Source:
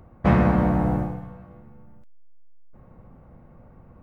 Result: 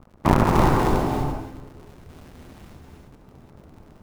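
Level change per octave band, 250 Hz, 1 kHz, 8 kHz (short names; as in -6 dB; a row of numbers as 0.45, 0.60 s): -1.0 dB, +6.0 dB, n/a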